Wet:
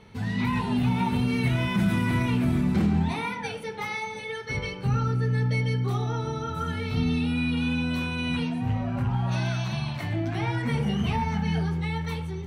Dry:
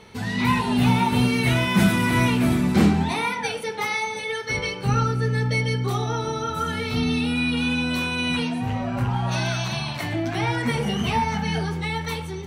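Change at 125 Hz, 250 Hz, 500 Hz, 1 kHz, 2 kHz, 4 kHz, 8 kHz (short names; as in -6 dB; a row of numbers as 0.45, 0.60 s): -1.5, -3.5, -6.0, -6.5, -7.0, -8.0, -11.0 dB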